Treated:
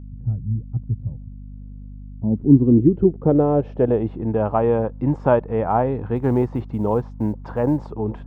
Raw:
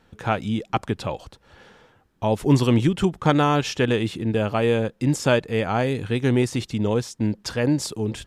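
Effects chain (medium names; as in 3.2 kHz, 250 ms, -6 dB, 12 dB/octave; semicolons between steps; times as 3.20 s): low-pass sweep 120 Hz -> 930 Hz, 1.35–4.33 s; 6.16–7.92 s: short-mantissa float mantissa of 6-bit; hum 50 Hz, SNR 16 dB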